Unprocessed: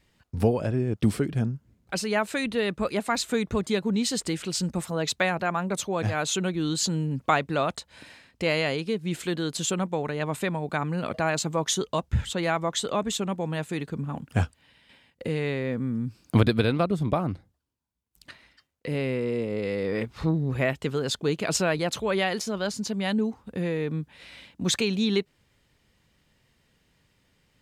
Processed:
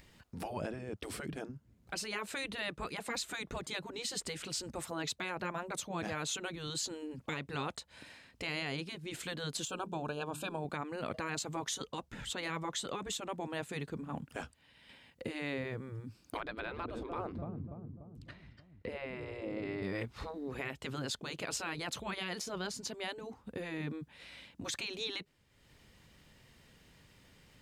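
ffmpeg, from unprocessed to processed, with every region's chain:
-filter_complex "[0:a]asettb=1/sr,asplit=3[s0][s1][s2];[s0]atrim=end=9.654[s3];[s1]atrim=start=9.65:end=10.65,asetpts=PTS-STARTPTS,afade=t=in:d=0.004:c=qsin,afade=t=out:st=0.996:d=0.004:c=qsin,deesser=0.6,asuperstop=centerf=2000:order=12:qfactor=3,bandreject=f=50:t=h:w=6,bandreject=f=100:t=h:w=6,bandreject=f=150:t=h:w=6,bandreject=f=200:t=h:w=6,bandreject=f=250:t=h:w=6,bandreject=f=300:t=h:w=6,bandreject=f=350:t=h:w=6,bandreject=f=400:t=h:w=6[s4];[s2]atrim=start=10.646[s5];[s3][s4]acrossfade=d=0.004:c1=hsin:c2=qsin[s6];[s6][s5]acrossfade=d=0.004:c1=qsin:c2=hsin,asettb=1/sr,asplit=3[s7][s8][s9];[s7]atrim=end=16.374[s10];[s8]atrim=start=16.37:end=19.83,asetpts=PTS-STARTPTS,afade=t=in:d=0.004:c=qsin,afade=t=out:st=3.456:d=0.004:c=qsin,aemphasis=mode=reproduction:type=bsi,asplit=2[s11][s12];[s12]adelay=293,lowpass=f=1200:p=1,volume=0.168,asplit=2[s13][s14];[s14]adelay=293,lowpass=f=1200:p=1,volume=0.53,asplit=2[s15][s16];[s16]adelay=293,lowpass=f=1200:p=1,volume=0.53,asplit=2[s17][s18];[s18]adelay=293,lowpass=f=1200:p=1,volume=0.53,asplit=2[s19][s20];[s20]adelay=293,lowpass=f=1200:p=1,volume=0.53[s21];[s11][s13][s15][s17][s19][s21]amix=inputs=6:normalize=0,atrim=end_sample=152586,acrossover=split=2500[s22][s23];[s23]acompressor=threshold=0.00501:ratio=4:attack=1:release=60[s24];[s22][s24]amix=inputs=2:normalize=0[s25];[s9]atrim=start=19.826[s26];[s10][s25]acrossfade=d=0.004:c1=hsin:c2=qsin[s27];[s27][s26]acrossfade=d=0.004:c1=qsin:c2=hsin,afftfilt=real='re*lt(hypot(re,im),0.251)':imag='im*lt(hypot(re,im),0.251)':win_size=1024:overlap=0.75,acompressor=mode=upward:threshold=0.00562:ratio=2.5,alimiter=limit=0.0841:level=0:latency=1:release=118,volume=0.531"

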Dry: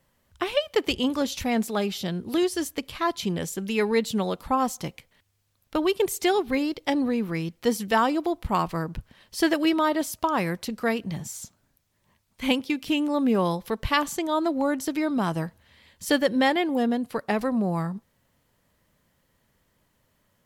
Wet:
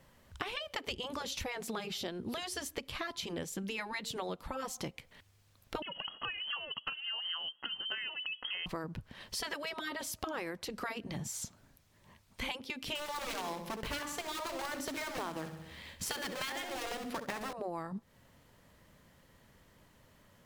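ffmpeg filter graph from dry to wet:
-filter_complex "[0:a]asettb=1/sr,asplit=3[s0][s1][s2];[s0]atrim=end=5.824[s3];[s1]atrim=start=5.82:end=8.66,asetpts=PTS-STARTPTS,afade=t=in:d=0.004:c=qsin,afade=t=out:st=2.836:d=0.004:c=qsin,acompressor=threshold=0.0562:ratio=4:attack=3.2:release=140:knee=1:detection=peak,asuperstop=centerf=960:order=4:qfactor=2,lowpass=f=2800:t=q:w=0.5098,lowpass=f=2800:t=q:w=0.6013,lowpass=f=2800:t=q:w=0.9,lowpass=f=2800:t=q:w=2.563,afreqshift=-3300[s4];[s2]atrim=start=8.656[s5];[s3][s4]acrossfade=d=0.004:c1=hsin:c2=qsin[s6];[s6][s5]acrossfade=d=0.004:c1=qsin:c2=hsin,asettb=1/sr,asplit=3[s7][s8][s9];[s7]atrim=end=12.954[s10];[s8]atrim=start=12.95:end=17.53,asetpts=PTS-STARTPTS,afade=t=in:d=0.004:c=qsin,afade=t=out:st=4.576:d=0.004:c=qsin,bandreject=f=52.29:t=h:w=4,bandreject=f=104.58:t=h:w=4,bandreject=f=156.87:t=h:w=4,acrusher=bits=2:mode=log:mix=0:aa=0.000001,aecho=1:1:65|130|195|260|325:0.224|0.112|0.056|0.028|0.014,atrim=end_sample=201978[s11];[s9]atrim=start=17.526[s12];[s10][s11]acrossfade=d=0.004:c1=hsin:c2=qsin[s13];[s13][s12]acrossfade=d=0.004:c1=qsin:c2=hsin,afftfilt=real='re*lt(hypot(re,im),0.316)':imag='im*lt(hypot(re,im),0.316)':win_size=1024:overlap=0.75,highshelf=f=8400:g=-7,acompressor=threshold=0.00708:ratio=6,volume=2"

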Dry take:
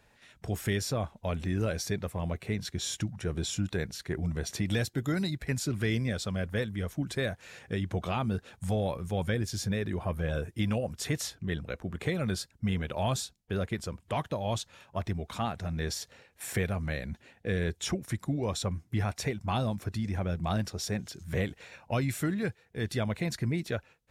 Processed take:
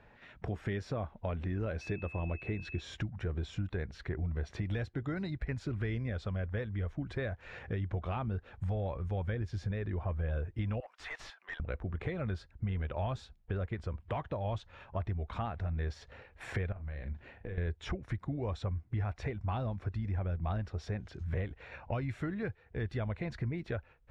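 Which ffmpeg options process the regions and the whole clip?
-filter_complex "[0:a]asettb=1/sr,asplit=3[s0][s1][s2];[s0]atrim=end=1.814[s3];[s1]atrim=start=1.81:end=2.81,asetpts=PTS-STARTPTS,afade=t=in:d=0.004:c=qsin,afade=t=out:st=0.996:d=0.004:c=qsin,equalizer=f=330:w=6.7:g=8.5,aeval=exprs='val(0)+0.01*sin(2*PI*2600*n/s)':c=same[s4];[s2]atrim=start=2.806[s5];[s3][s4]acrossfade=d=0.004:c1=hsin:c2=qsin[s6];[s6][s5]acrossfade=d=0.004:c1=qsin:c2=hsin,asettb=1/sr,asplit=3[s7][s8][s9];[s7]atrim=end=10.804[s10];[s8]atrim=start=10.8:end=11.6,asetpts=PTS-STARTPTS,afade=t=in:d=0.004:c=qsin,afade=t=out:st=0.796:d=0.004:c=qsin,highpass=f=800:w=0.5412,highpass=f=800:w=1.3066,asoftclip=type=hard:threshold=0.0112[s11];[s9]atrim=start=11.596[s12];[s10][s11]acrossfade=d=0.004:c1=hsin:c2=qsin[s13];[s13][s12]acrossfade=d=0.004:c1=qsin:c2=hsin,asettb=1/sr,asplit=3[s14][s15][s16];[s14]atrim=end=16.724[s17];[s15]atrim=start=16.72:end=17.58,asetpts=PTS-STARTPTS,afade=t=in:d=0.004:c=qsin,afade=t=out:st=0.856:d=0.004:c=qsin,acompressor=threshold=0.00891:ratio=16:attack=3.2:release=140:knee=1:detection=peak,asplit=2[s18][s19];[s19]adelay=40,volume=0.398[s20];[s18][s20]amix=inputs=2:normalize=0,atrim=end_sample=37926[s21];[s16]atrim=start=17.576[s22];[s17][s21]acrossfade=d=0.004:c1=hsin:c2=qsin[s23];[s23][s22]acrossfade=d=0.004:c1=qsin:c2=hsin,lowpass=2100,asubboost=boost=6:cutoff=67,acompressor=threshold=0.00794:ratio=2.5,volume=1.78"

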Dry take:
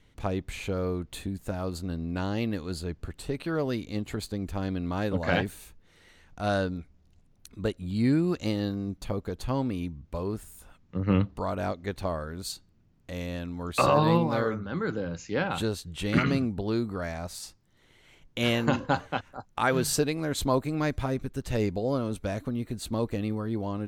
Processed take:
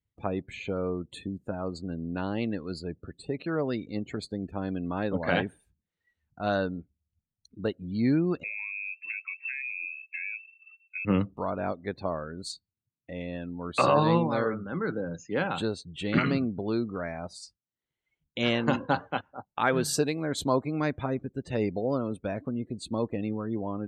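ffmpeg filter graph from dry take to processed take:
-filter_complex "[0:a]asettb=1/sr,asplit=3[s0][s1][s2];[s0]atrim=end=8.434[s3];[s1]atrim=start=8.43:end=11.05,asetpts=PTS-STARTPTS,afade=t=in:d=0.004:c=qsin,afade=t=out:st=2.616:d=0.004:c=qsin,acrusher=bits=7:mode=log:mix=0:aa=0.000001,acompressor=threshold=0.0282:ratio=5:attack=3.2:release=140:knee=1:detection=peak,lowpass=f=2300:t=q:w=0.5098,lowpass=f=2300:t=q:w=0.6013,lowpass=f=2300:t=q:w=0.9,lowpass=f=2300:t=q:w=2.563,afreqshift=-2700[s4];[s2]atrim=start=11.046[s5];[s3][s4]acrossfade=d=0.004:c1=hsin:c2=qsin[s6];[s6][s5]acrossfade=d=0.004:c1=qsin:c2=hsin,highshelf=f=12000:g=-7,afftdn=nr=30:nf=-44,highpass=130"

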